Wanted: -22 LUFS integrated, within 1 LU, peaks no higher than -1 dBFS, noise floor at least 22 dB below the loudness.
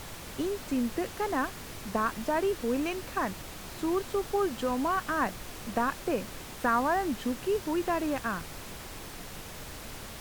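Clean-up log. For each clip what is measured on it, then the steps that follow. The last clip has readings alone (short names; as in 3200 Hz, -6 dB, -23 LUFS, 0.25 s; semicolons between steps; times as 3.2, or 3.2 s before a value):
noise floor -43 dBFS; noise floor target -53 dBFS; loudness -31.0 LUFS; peak -14.5 dBFS; loudness target -22.0 LUFS
-> noise print and reduce 10 dB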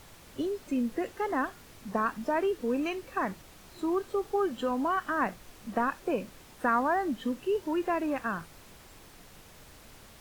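noise floor -53 dBFS; loudness -31.0 LUFS; peak -15.0 dBFS; loudness target -22.0 LUFS
-> gain +9 dB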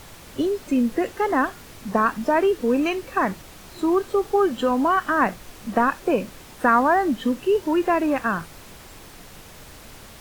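loudness -22.0 LUFS; peak -6.0 dBFS; noise floor -44 dBFS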